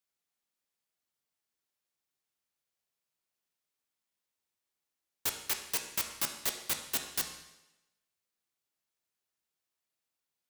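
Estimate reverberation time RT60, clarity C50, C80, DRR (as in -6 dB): 0.95 s, 7.0 dB, 9.5 dB, 4.0 dB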